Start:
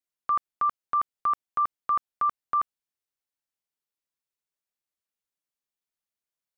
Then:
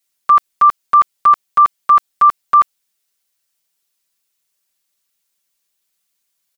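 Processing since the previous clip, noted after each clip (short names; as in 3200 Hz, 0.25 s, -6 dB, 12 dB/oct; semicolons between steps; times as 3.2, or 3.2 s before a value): high shelf 2100 Hz +11 dB; comb 5.2 ms, depth 96%; gain +7.5 dB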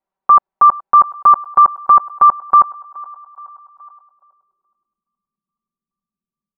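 narrowing echo 0.422 s, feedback 61%, band-pass 1000 Hz, level -21 dB; low-pass sweep 870 Hz -> 220 Hz, 3.92–5.1; gain +1.5 dB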